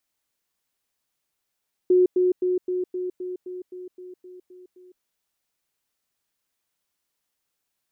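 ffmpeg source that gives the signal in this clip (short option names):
-f lavfi -i "aevalsrc='pow(10,(-13.5-3*floor(t/0.26))/20)*sin(2*PI*364*t)*clip(min(mod(t,0.26),0.16-mod(t,0.26))/0.005,0,1)':d=3.12:s=44100"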